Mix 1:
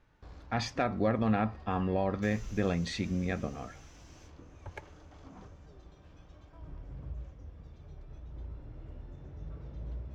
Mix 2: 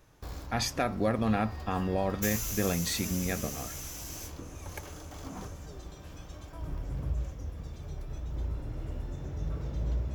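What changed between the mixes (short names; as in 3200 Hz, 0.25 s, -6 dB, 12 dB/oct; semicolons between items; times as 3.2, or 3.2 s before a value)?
background +9.0 dB; master: remove air absorption 150 m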